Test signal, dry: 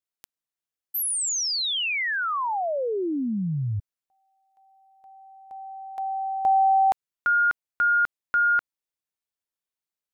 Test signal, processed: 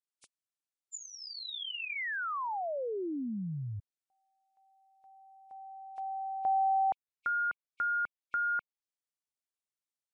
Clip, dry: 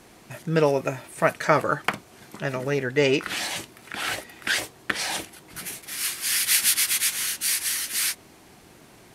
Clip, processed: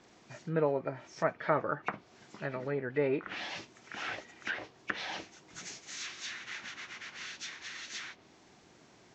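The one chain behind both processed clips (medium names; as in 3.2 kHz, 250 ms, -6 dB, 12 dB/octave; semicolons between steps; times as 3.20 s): knee-point frequency compression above 2.2 kHz 1.5:1; low-pass that closes with the level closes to 1.6 kHz, closed at -21.5 dBFS; bass shelf 64 Hz -11 dB; trim -8.5 dB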